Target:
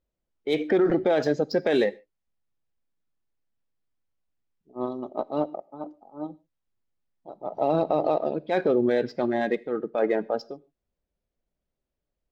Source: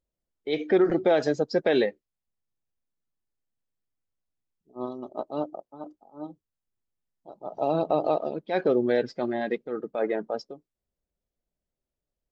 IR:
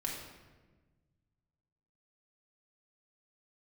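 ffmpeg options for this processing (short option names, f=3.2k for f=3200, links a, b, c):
-filter_complex "[0:a]alimiter=limit=-17dB:level=0:latency=1:release=21,adynamicsmooth=sensitivity=5:basefreq=4.7k,asplit=2[a][b];[1:a]atrim=start_sample=2205,atrim=end_sample=6615,highshelf=f=2.9k:g=10[c];[b][c]afir=irnorm=-1:irlink=0,volume=-21.5dB[d];[a][d]amix=inputs=2:normalize=0,volume=3dB"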